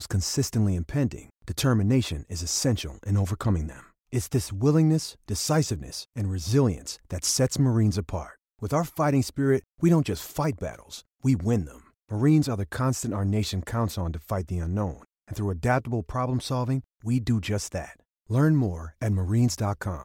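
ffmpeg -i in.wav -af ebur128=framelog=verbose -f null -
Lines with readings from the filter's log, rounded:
Integrated loudness:
  I:         -26.4 LUFS
  Threshold: -36.6 LUFS
Loudness range:
  LRA:         3.1 LU
  Threshold: -46.7 LUFS
  LRA low:   -28.7 LUFS
  LRA high:  -25.6 LUFS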